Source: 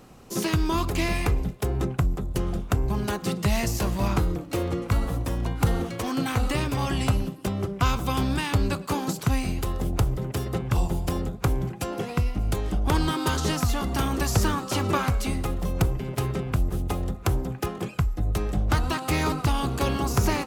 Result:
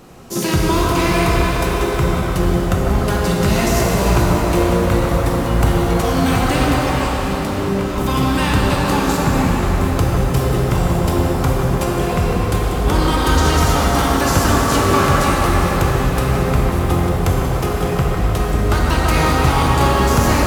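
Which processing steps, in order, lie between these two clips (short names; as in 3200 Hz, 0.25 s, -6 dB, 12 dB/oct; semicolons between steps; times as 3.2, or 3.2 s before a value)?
1.54–2 Bessel high-pass 300 Hz, order 8; in parallel at +1 dB: limiter -19 dBFS, peak gain reduction 8 dB; 6.77–7.99 on the sum: negative-ratio compressor -26 dBFS, ratio -1; 9.17–9.76 air absorption 340 m; band-limited delay 0.15 s, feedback 77%, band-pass 850 Hz, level -4 dB; shimmer reverb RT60 3.6 s, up +7 st, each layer -8 dB, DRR -2 dB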